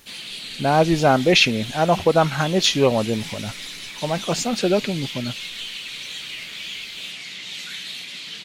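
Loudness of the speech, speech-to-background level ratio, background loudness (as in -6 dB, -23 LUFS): -19.5 LUFS, 12.0 dB, -31.5 LUFS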